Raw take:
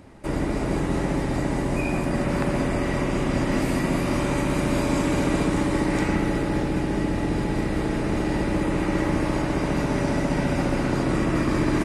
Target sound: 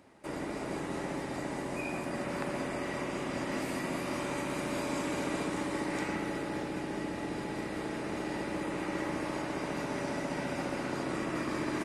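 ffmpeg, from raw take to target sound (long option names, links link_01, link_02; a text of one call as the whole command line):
ffmpeg -i in.wav -af "highpass=frequency=370:poles=1,volume=-7.5dB" out.wav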